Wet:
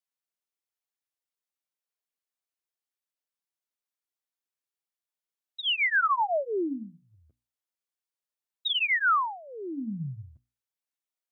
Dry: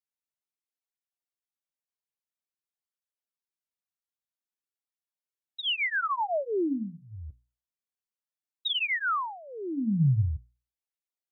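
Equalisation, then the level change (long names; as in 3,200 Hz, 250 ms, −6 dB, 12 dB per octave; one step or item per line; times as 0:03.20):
high-pass filter 290 Hz 12 dB per octave
dynamic equaliser 1,400 Hz, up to +5 dB, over −40 dBFS, Q 0.84
0.0 dB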